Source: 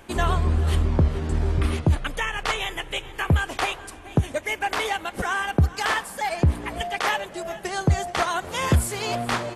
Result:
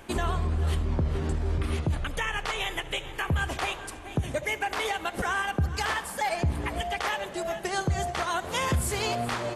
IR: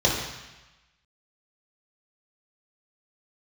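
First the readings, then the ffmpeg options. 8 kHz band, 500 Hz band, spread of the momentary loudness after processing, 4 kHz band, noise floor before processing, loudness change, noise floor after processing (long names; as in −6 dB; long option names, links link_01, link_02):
−2.5 dB, −3.0 dB, 4 LU, −3.0 dB, −42 dBFS, −4.5 dB, −41 dBFS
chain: -filter_complex "[0:a]alimiter=limit=-19dB:level=0:latency=1:release=120,asplit=2[link_01][link_02];[1:a]atrim=start_sample=2205,asetrate=48510,aresample=44100,adelay=67[link_03];[link_02][link_03]afir=irnorm=-1:irlink=0,volume=-31.5dB[link_04];[link_01][link_04]amix=inputs=2:normalize=0"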